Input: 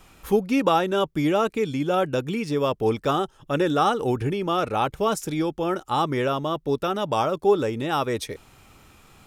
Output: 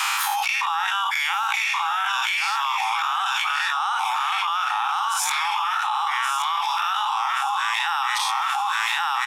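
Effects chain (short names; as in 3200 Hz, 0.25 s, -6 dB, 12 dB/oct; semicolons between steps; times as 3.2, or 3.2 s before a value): spectral dilation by 0.12 s; steep high-pass 820 Hz 96 dB/oct; high shelf 11000 Hz -9.5 dB; feedback echo 1.126 s, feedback 31%, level -6 dB; fast leveller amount 100%; gain -7 dB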